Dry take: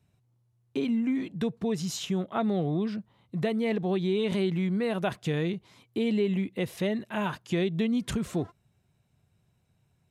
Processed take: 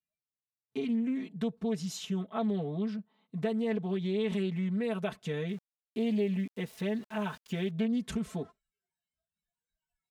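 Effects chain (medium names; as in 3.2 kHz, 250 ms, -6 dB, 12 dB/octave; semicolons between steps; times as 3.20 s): spectral noise reduction 27 dB; comb 4.6 ms, depth 97%; 5.49–7.71 s: small samples zeroed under -42.5 dBFS; loudspeaker Doppler distortion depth 0.13 ms; trim -8.5 dB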